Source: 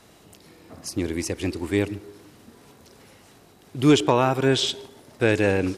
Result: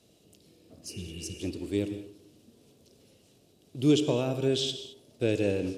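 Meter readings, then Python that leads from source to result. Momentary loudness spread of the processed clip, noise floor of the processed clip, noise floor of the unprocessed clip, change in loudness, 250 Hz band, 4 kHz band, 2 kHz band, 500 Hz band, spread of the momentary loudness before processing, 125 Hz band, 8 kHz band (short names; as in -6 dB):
17 LU, -63 dBFS, -53 dBFS, -7.0 dB, -6.0 dB, -6.5 dB, -14.0 dB, -6.5 dB, 16 LU, -6.5 dB, -7.5 dB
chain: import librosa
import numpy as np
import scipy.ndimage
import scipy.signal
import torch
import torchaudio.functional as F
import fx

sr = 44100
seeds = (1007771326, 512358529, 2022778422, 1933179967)

p1 = fx.band_shelf(x, sr, hz=1300.0, db=-13.5, octaves=1.7)
p2 = np.sign(p1) * np.maximum(np.abs(p1) - 10.0 ** (-38.5 / 20.0), 0.0)
p3 = p1 + F.gain(torch.from_numpy(p2), -10.5).numpy()
p4 = scipy.signal.sosfilt(scipy.signal.butter(2, 53.0, 'highpass', fs=sr, output='sos'), p3)
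p5 = fx.high_shelf(p4, sr, hz=11000.0, db=-4.5)
p6 = fx.spec_repair(p5, sr, seeds[0], start_s=0.92, length_s=0.43, low_hz=230.0, high_hz=3000.0, source='after')
p7 = fx.rev_gated(p6, sr, seeds[1], gate_ms=240, shape='flat', drr_db=9.5)
y = F.gain(torch.from_numpy(p7), -8.5).numpy()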